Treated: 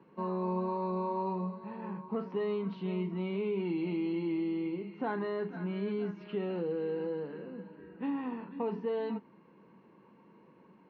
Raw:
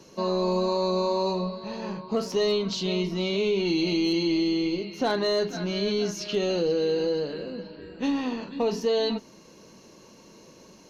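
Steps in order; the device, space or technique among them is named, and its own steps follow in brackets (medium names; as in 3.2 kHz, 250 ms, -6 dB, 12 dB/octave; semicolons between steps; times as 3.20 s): bass cabinet (cabinet simulation 84–2200 Hz, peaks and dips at 95 Hz -8 dB, 190 Hz +4 dB, 610 Hz -8 dB, 940 Hz +5 dB); trim -8 dB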